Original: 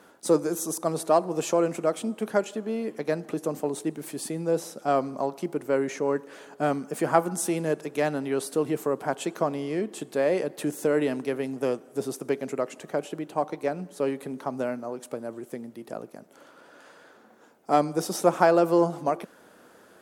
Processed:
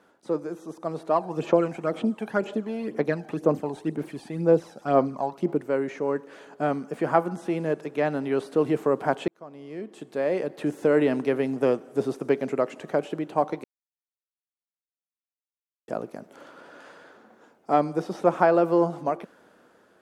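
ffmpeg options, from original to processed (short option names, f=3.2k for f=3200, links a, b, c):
-filter_complex "[0:a]asplit=3[a][b][c];[a]afade=t=out:st=1.14:d=0.02[d];[b]aphaser=in_gain=1:out_gain=1:delay=1.3:decay=0.57:speed=2:type=sinusoidal,afade=t=in:st=1.14:d=0.02,afade=t=out:st=5.61:d=0.02[e];[c]afade=t=in:st=5.61:d=0.02[f];[d][e][f]amix=inputs=3:normalize=0,asplit=4[g][h][i][j];[g]atrim=end=9.28,asetpts=PTS-STARTPTS,afade=t=out:st=9.276:d=0.004:c=hsin[k];[h]atrim=start=9.28:end=13.64,asetpts=PTS-STARTPTS,afade=t=in:d=1.93,afade=t=out:st=4.356:d=0.004:c=hsin[l];[i]atrim=start=13.64:end=15.88,asetpts=PTS-STARTPTS,volume=0[m];[j]atrim=start=15.88,asetpts=PTS-STARTPTS,afade=t=in:d=0.004:c=hsin[n];[k][l][m][n]concat=n=4:v=0:a=1,acrossover=split=3500[o][p];[p]acompressor=threshold=-49dB:ratio=4:attack=1:release=60[q];[o][q]amix=inputs=2:normalize=0,highshelf=f=7k:g=-11.5,dynaudnorm=f=410:g=5:m=11.5dB,volume=-6dB"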